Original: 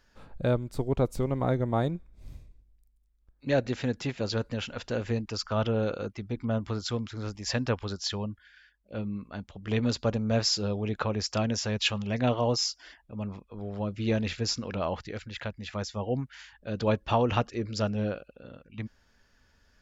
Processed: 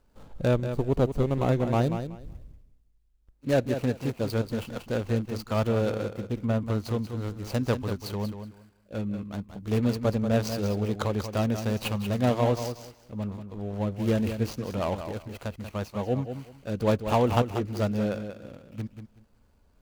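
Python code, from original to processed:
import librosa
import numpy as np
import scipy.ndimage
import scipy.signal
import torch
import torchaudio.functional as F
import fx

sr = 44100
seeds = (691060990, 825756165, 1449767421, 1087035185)

y = scipy.ndimage.median_filter(x, 25, mode='constant')
y = fx.high_shelf(y, sr, hz=5000.0, db=8.0)
y = fx.echo_feedback(y, sr, ms=187, feedback_pct=20, wet_db=-9)
y = y * 10.0 ** (2.5 / 20.0)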